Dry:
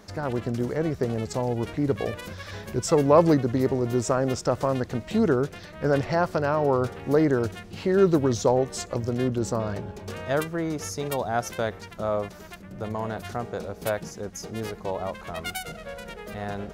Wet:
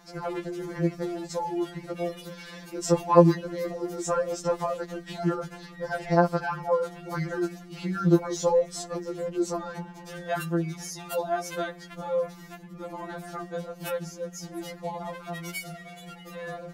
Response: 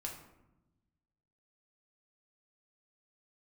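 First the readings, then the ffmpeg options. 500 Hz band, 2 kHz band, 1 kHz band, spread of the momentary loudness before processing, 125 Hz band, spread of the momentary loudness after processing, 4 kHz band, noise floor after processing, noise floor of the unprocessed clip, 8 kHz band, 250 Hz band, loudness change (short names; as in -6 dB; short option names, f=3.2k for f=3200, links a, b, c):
-3.0 dB, -2.5 dB, -1.5 dB, 14 LU, -3.5 dB, 16 LU, -3.0 dB, -46 dBFS, -44 dBFS, -2.5 dB, -3.0 dB, -3.0 dB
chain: -af "afftfilt=real='re*2.83*eq(mod(b,8),0)':imag='im*2.83*eq(mod(b,8),0)':win_size=2048:overlap=0.75"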